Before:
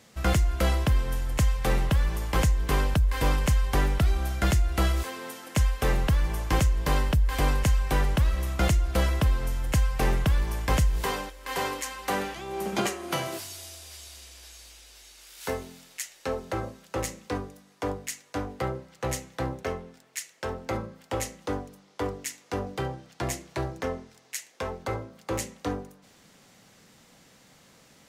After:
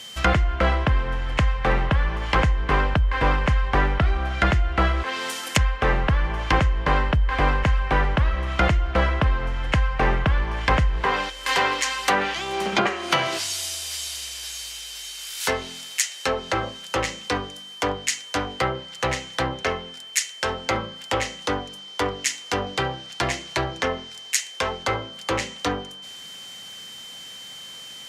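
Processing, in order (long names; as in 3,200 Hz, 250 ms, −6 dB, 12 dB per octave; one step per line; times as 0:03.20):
steady tone 3,100 Hz −52 dBFS
treble cut that deepens with the level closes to 1,700 Hz, closed at −23 dBFS
tilt shelving filter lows −6.5 dB, about 900 Hz
level +8.5 dB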